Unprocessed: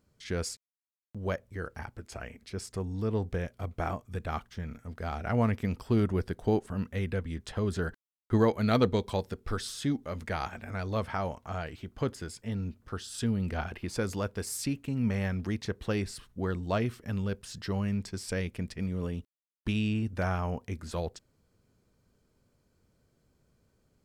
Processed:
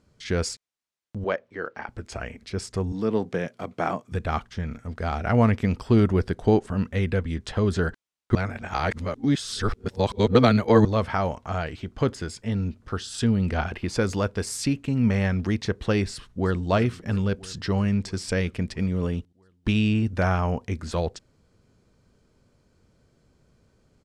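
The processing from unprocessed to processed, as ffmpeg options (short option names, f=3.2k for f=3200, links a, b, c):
-filter_complex "[0:a]asettb=1/sr,asplit=3[a][b][c];[a]atrim=end=1.244[d];[b]atrim=start=1.24:end=1.89,asetpts=PTS-STARTPTS,afade=t=in:d=0.004:c=qsin,afade=t=out:st=0.646:d=0.004:c=qsin,highpass=290,lowpass=3.7k[e];[c]atrim=start=1.886[f];[d][e]acrossfade=d=0.004:c1=hsin:c2=qsin[g];[g][f]acrossfade=d=0.004:c1=qsin:c2=hsin,asettb=1/sr,asplit=3[h][i][j];[h]atrim=end=2.924[k];[i]atrim=start=2.92:end=4.12,asetpts=PTS-STARTPTS,afade=t=in:d=0.004:c=qsin,afade=t=out:st=1.196:d=0.004:c=qsin,highpass=f=150:w=0.5412,highpass=f=150:w=1.3066[l];[j]atrim=start=4.116[m];[k][l]acrossfade=d=0.004:c1=hsin:c2=qsin[n];[n][m]acrossfade=d=0.004:c1=qsin:c2=hsin,asplit=2[o][p];[p]afade=t=in:st=16.12:d=0.01,afade=t=out:st=16.68:d=0.01,aecho=0:1:330|660|990|1320|1650|1980|2310|2640|2970|3300:0.149624|0.112218|0.0841633|0.0631224|0.0473418|0.0355064|0.0266298|0.0199723|0.0149793|0.0112344[q];[o][q]amix=inputs=2:normalize=0,asplit=3[r][s][t];[r]atrim=end=8.352[u];[s]atrim=start=8.348:end=10.852,asetpts=PTS-STARTPTS,areverse[v];[t]atrim=start=10.848[w];[u][v]acrossfade=d=0.004:c1=hsin:c2=hsin[x];[x][w]acrossfade=d=0.004:c1=hsin:c2=hsin,lowpass=7.8k,volume=7.5dB"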